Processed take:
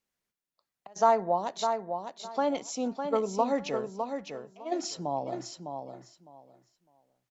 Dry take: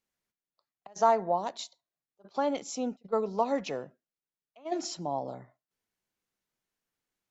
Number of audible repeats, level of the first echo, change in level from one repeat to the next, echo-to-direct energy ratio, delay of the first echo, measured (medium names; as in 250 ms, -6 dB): 2, -6.5 dB, -14.5 dB, -6.5 dB, 606 ms